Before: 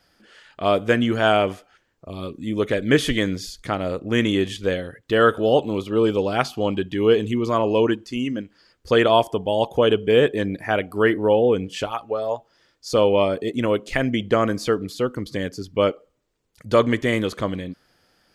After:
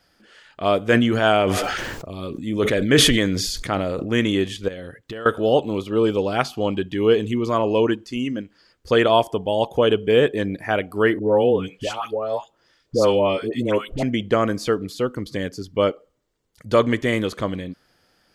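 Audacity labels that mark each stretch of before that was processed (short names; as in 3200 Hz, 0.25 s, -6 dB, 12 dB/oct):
0.860000	4.120000	sustainer at most 27 dB/s
4.680000	5.260000	compressor 10:1, threshold -29 dBFS
11.190000	14.030000	dispersion highs, late by 0.118 s, half as late at 1000 Hz
15.620000	16.710000	notch 2500 Hz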